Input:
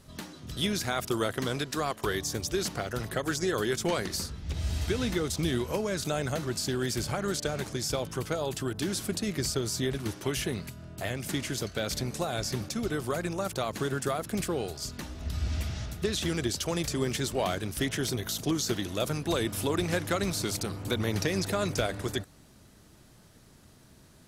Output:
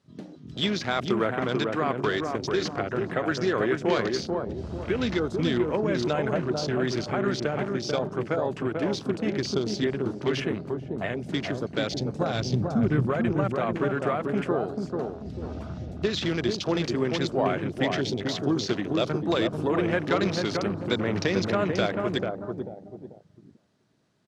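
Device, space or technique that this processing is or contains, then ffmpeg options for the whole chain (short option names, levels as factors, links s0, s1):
over-cleaned archive recording: -filter_complex "[0:a]asettb=1/sr,asplit=3[s0][s1][s2];[s0]atrim=end=11.824[s3];[s1]atrim=start=11.82:end=13.09,asetpts=PTS-STARTPTS,afade=t=in:d=0.004:c=qsin,afade=t=out:st=1.266:d=0.004:c=qsin,asubboost=boost=11:cutoff=230[s4];[s2]atrim=start=13.086[s5];[s3][s4]acrossfade=d=0.004:c1=hsin:c2=qsin[s6];[s6][s5]acrossfade=d=0.004:c1=qsin:c2=hsin,highpass=150,lowpass=5600,asplit=2[s7][s8];[s8]adelay=441,lowpass=f=1200:p=1,volume=0.708,asplit=2[s9][s10];[s10]adelay=441,lowpass=f=1200:p=1,volume=0.39,asplit=2[s11][s12];[s12]adelay=441,lowpass=f=1200:p=1,volume=0.39,asplit=2[s13][s14];[s14]adelay=441,lowpass=f=1200:p=1,volume=0.39,asplit=2[s15][s16];[s16]adelay=441,lowpass=f=1200:p=1,volume=0.39[s17];[s7][s9][s11][s13][s15][s17]amix=inputs=6:normalize=0,afwtdn=0.01,volume=1.58"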